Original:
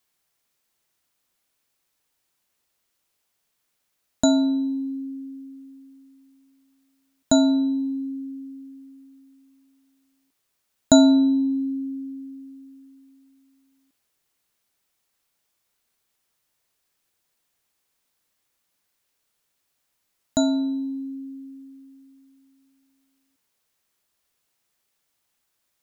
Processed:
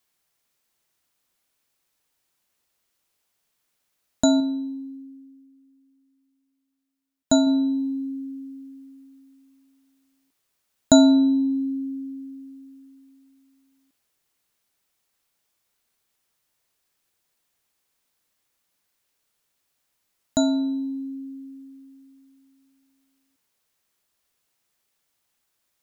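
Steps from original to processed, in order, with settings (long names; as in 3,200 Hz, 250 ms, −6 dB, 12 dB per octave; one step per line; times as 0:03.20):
0:04.40–0:07.47: expander for the loud parts 1.5 to 1, over −41 dBFS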